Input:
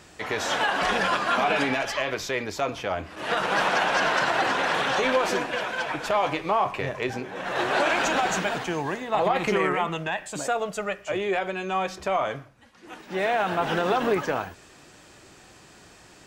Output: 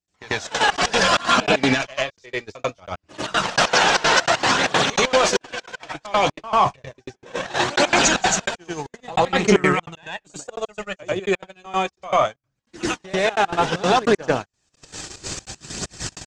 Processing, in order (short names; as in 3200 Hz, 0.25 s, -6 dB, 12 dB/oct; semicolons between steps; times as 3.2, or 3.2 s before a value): recorder AGC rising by 55 dB/s; LPF 7400 Hz 24 dB/oct; gate -24 dBFS, range -43 dB; tone controls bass +5 dB, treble +14 dB; in parallel at +2 dB: limiter -14.5 dBFS, peak gain reduction 5.5 dB; on the sum: step gate ".x.xxx.xx" 193 bpm -60 dB; phaser 0.63 Hz, delay 2.7 ms, feedback 33%; reverse echo 93 ms -17 dB